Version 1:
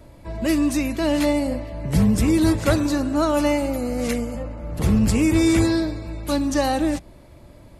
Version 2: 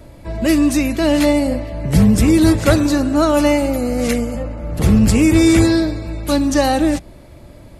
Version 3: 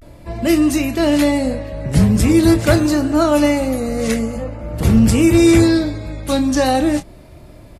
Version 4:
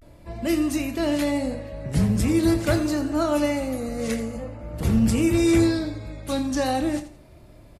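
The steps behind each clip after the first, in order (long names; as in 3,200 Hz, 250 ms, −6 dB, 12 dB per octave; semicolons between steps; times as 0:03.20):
parametric band 1,000 Hz −3.5 dB 0.3 octaves; level +6 dB
pitch vibrato 0.44 Hz 73 cents; double-tracking delay 27 ms −9.5 dB; level −1 dB
repeating echo 84 ms, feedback 27%, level −13 dB; level −8.5 dB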